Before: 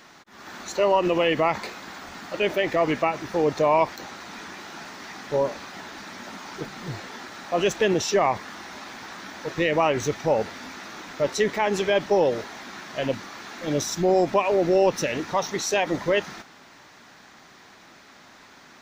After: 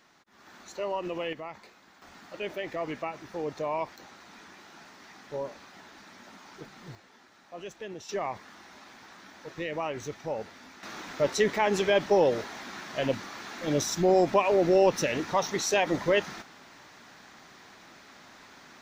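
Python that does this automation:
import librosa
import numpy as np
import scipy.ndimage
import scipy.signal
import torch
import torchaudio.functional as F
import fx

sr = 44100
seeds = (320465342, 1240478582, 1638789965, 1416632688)

y = fx.gain(x, sr, db=fx.steps((0.0, -12.0), (1.33, -18.5), (2.02, -11.5), (6.95, -19.0), (8.09, -11.5), (10.83, -2.0)))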